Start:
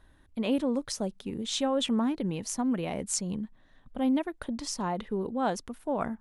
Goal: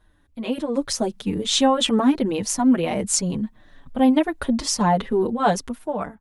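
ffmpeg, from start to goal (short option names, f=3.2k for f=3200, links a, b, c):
-filter_complex "[0:a]dynaudnorm=f=210:g=7:m=12dB,asplit=2[a][b];[b]adelay=6.1,afreqshift=-1.7[c];[a][c]amix=inputs=2:normalize=1,volume=2.5dB"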